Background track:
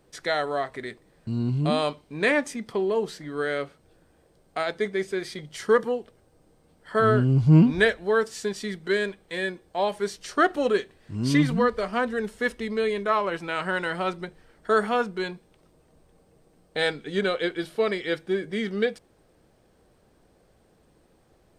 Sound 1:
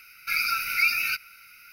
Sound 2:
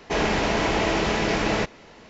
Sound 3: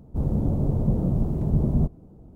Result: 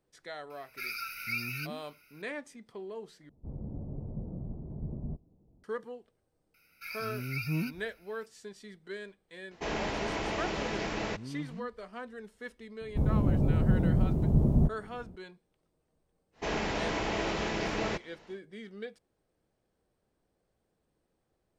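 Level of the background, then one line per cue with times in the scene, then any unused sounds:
background track -17 dB
0.50 s: add 1 -12.5 dB
3.29 s: replace with 3 -16.5 dB + low-pass 1 kHz
6.54 s: add 1 -16.5 dB
9.51 s: add 2 -11 dB
12.81 s: add 3 -2.5 dB
16.32 s: add 2 -9.5 dB, fades 0.10 s

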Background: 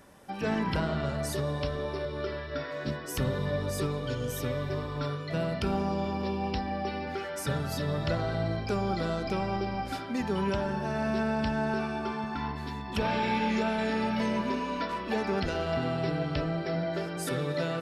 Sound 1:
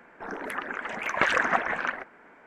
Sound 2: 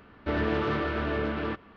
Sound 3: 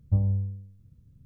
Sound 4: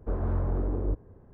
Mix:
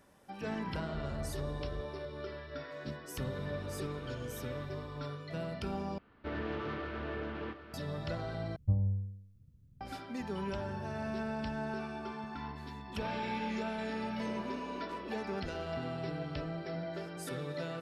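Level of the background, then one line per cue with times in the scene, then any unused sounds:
background -8.5 dB
0.87 s: add 4 -14.5 dB
3.10 s: add 2 -12 dB + compression, threshold -34 dBFS
5.98 s: replace with 2 -10.5 dB + delay 759 ms -11.5 dB
8.56 s: replace with 3 -6 dB
10.41 s: add 3 -5 dB + compression 4:1, threshold -42 dBFS
14.18 s: add 4 -11.5 dB + high-pass 280 Hz 24 dB/octave
not used: 1

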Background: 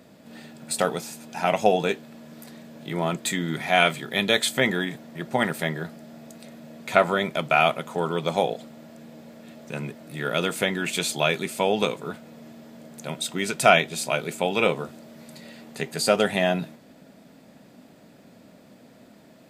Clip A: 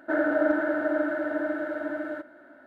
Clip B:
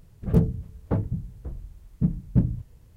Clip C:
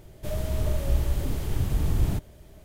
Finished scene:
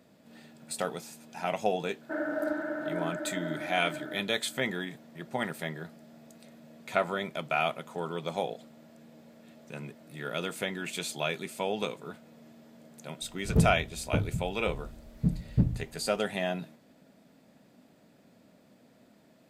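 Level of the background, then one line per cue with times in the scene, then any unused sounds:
background -9 dB
2.01 s: add A -8 dB
13.22 s: add B -4 dB
not used: C

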